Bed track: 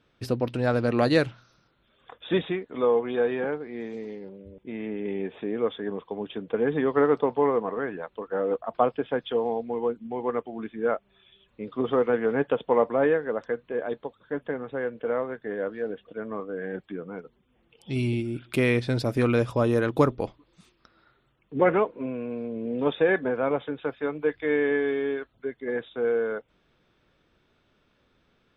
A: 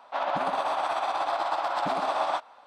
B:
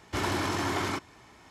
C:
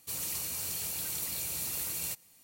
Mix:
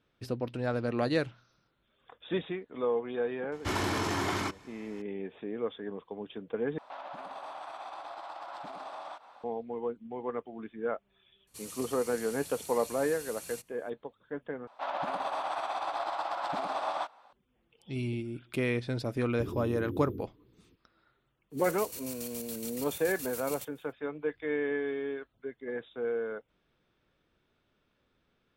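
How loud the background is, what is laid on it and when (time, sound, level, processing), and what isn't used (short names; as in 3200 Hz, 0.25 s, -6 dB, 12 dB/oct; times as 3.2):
bed track -7.5 dB
3.52 add B -1.5 dB
6.78 replace with A -2 dB + compressor 5:1, threshold -39 dBFS
11.47 add C -8 dB + steep low-pass 12000 Hz
14.67 replace with A -6 dB
19.26 add B -5.5 dB + FFT band-reject 510–12000 Hz
21.5 add C -5 dB, fades 0.05 s + chopper 7.1 Hz, depth 60%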